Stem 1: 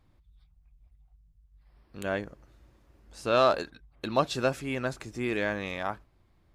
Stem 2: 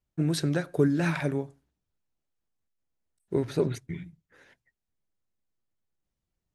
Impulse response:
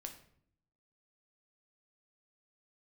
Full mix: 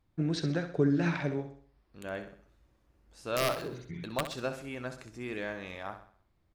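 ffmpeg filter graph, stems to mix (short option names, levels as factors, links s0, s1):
-filter_complex "[0:a]aeval=exprs='(mod(3.98*val(0)+1,2)-1)/3.98':c=same,volume=0.355,asplit=4[s0][s1][s2][s3];[s1]volume=0.224[s4];[s2]volume=0.355[s5];[1:a]lowpass=f=6200:w=0.5412,lowpass=f=6200:w=1.3066,volume=0.631,asplit=2[s6][s7];[s7]volume=0.316[s8];[s3]apad=whole_len=288638[s9];[s6][s9]sidechaincompress=threshold=0.00282:ratio=8:attack=16:release=304[s10];[2:a]atrim=start_sample=2205[s11];[s4][s11]afir=irnorm=-1:irlink=0[s12];[s5][s8]amix=inputs=2:normalize=0,aecho=0:1:64|128|192|256|320|384:1|0.43|0.185|0.0795|0.0342|0.0147[s13];[s0][s10][s12][s13]amix=inputs=4:normalize=0"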